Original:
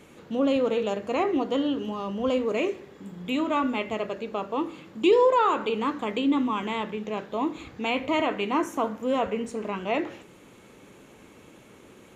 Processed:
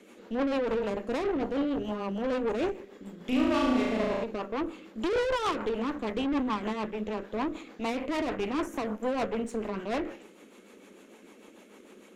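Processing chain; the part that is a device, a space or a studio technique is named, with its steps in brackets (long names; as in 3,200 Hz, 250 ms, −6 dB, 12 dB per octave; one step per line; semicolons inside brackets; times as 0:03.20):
elliptic high-pass filter 200 Hz
dynamic equaliser 4,300 Hz, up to −8 dB, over −49 dBFS, Q 0.86
overdriven rotary cabinet (tube saturation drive 30 dB, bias 0.8; rotating-speaker cabinet horn 6.7 Hz)
0:03.17–0:04.24: flutter between parallel walls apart 6.1 metres, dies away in 1.1 s
level +6 dB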